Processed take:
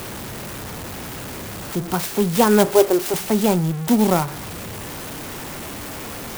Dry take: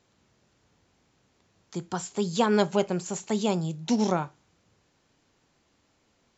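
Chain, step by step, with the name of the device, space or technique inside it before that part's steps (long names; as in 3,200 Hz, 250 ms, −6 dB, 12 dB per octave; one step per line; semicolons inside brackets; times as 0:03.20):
0:02.65–0:03.14: low shelf with overshoot 260 Hz −9 dB, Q 3
early CD player with a faulty converter (converter with a step at zero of −33 dBFS; converter with an unsteady clock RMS 0.061 ms)
level +7 dB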